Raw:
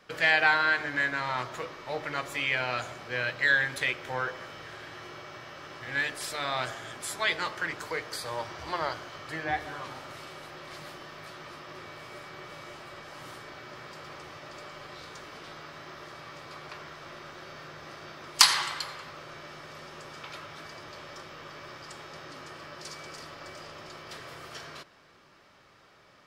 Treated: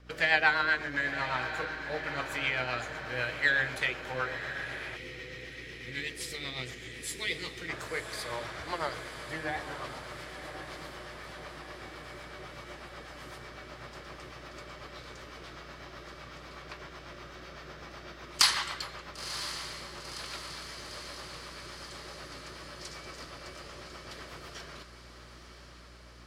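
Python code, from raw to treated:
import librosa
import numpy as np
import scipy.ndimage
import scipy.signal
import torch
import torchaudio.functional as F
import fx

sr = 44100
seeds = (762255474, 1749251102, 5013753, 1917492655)

p1 = fx.add_hum(x, sr, base_hz=60, snr_db=19)
p2 = fx.rotary(p1, sr, hz=8.0)
p3 = p2 + fx.echo_diffused(p2, sr, ms=1010, feedback_pct=65, wet_db=-10.0, dry=0)
y = fx.spec_box(p3, sr, start_s=4.96, length_s=2.73, low_hz=520.0, high_hz=1800.0, gain_db=-14)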